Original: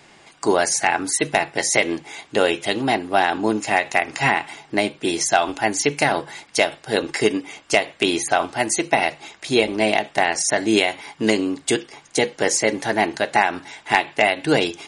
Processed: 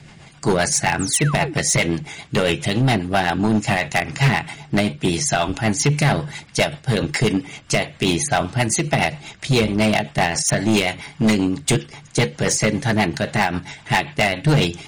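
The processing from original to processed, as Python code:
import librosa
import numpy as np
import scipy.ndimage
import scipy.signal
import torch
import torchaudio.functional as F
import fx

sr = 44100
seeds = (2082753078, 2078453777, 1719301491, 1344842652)

y = fx.low_shelf_res(x, sr, hz=220.0, db=12.0, q=1.5)
y = fx.rotary(y, sr, hz=7.5)
y = np.clip(y, -10.0 ** (-16.0 / 20.0), 10.0 ** (-16.0 / 20.0))
y = fx.spec_paint(y, sr, seeds[0], shape='fall', start_s=0.99, length_s=0.55, low_hz=270.0, high_hz=9200.0, level_db=-34.0)
y = F.gain(torch.from_numpy(y), 4.5).numpy()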